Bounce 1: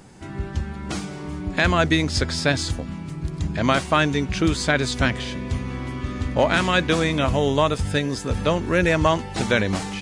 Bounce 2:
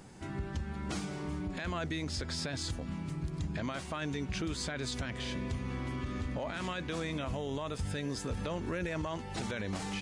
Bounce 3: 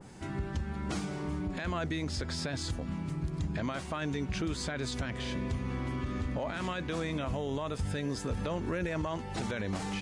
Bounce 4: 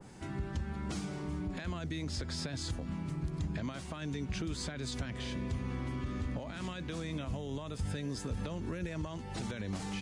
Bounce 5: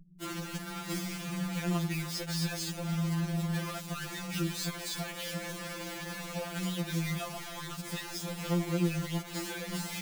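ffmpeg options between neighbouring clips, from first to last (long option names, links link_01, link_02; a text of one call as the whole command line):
ffmpeg -i in.wav -af "acompressor=threshold=-27dB:ratio=2.5,alimiter=limit=-21.5dB:level=0:latency=1:release=18,volume=-5.5dB" out.wav
ffmpeg -i in.wav -af "adynamicequalizer=threshold=0.002:dfrequency=1900:dqfactor=0.7:tfrequency=1900:tqfactor=0.7:attack=5:release=100:ratio=0.375:range=1.5:mode=cutabove:tftype=highshelf,volume=2.5dB" out.wav
ffmpeg -i in.wav -filter_complex "[0:a]acrossover=split=290|3000[link_01][link_02][link_03];[link_02]acompressor=threshold=-41dB:ratio=6[link_04];[link_01][link_04][link_03]amix=inputs=3:normalize=0,volume=-2dB" out.wav
ffmpeg -i in.wav -filter_complex "[0:a]acrossover=split=170[link_01][link_02];[link_02]acrusher=bits=6:mix=0:aa=0.000001[link_03];[link_01][link_03]amix=inputs=2:normalize=0,afftfilt=real='re*2.83*eq(mod(b,8),0)':imag='im*2.83*eq(mod(b,8),0)':win_size=2048:overlap=0.75,volume=6dB" out.wav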